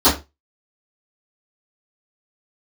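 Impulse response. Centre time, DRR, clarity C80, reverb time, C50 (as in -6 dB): 28 ms, -17.5 dB, 16.5 dB, 0.25 s, 10.0 dB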